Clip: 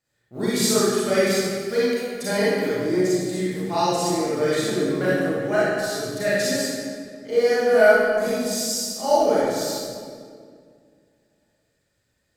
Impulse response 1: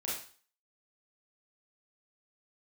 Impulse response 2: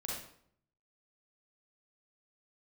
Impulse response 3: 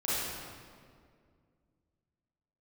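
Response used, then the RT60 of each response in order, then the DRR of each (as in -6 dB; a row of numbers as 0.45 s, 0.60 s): 3; 0.40 s, 0.65 s, 2.1 s; -6.5 dB, -4.5 dB, -11.0 dB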